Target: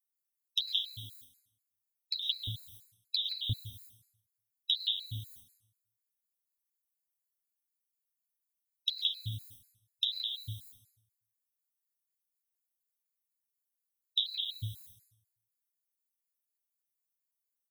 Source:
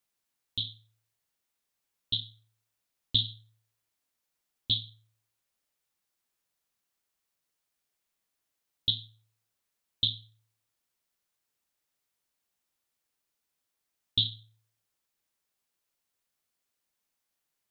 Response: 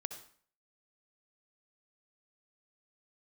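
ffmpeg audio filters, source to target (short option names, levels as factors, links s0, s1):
-filter_complex "[0:a]acrossover=split=690|3200[s0][s1][s2];[s1]adelay=170[s3];[s0]adelay=350[s4];[s4][s3][s2]amix=inputs=3:normalize=0,agate=range=0.0224:threshold=0.001:ratio=3:detection=peak,aemphasis=mode=production:type=riaa,alimiter=limit=0.106:level=0:latency=1:release=152,acompressor=threshold=0.01:ratio=6,asubboost=boost=9:cutoff=98,asplit=2[s5][s6];[1:a]atrim=start_sample=2205,asetrate=27342,aresample=44100,highshelf=f=2200:g=11[s7];[s6][s7]afir=irnorm=-1:irlink=0,volume=1.12[s8];[s5][s8]amix=inputs=2:normalize=0,flanger=delay=9.3:depth=1.9:regen=-26:speed=0.28:shape=sinusoidal,afftfilt=real='re*gt(sin(2*PI*4.1*pts/sr)*(1-2*mod(floor(b*sr/1024/1300),2)),0)':imag='im*gt(sin(2*PI*4.1*pts/sr)*(1-2*mod(floor(b*sr/1024/1300),2)),0)':win_size=1024:overlap=0.75,volume=1.78"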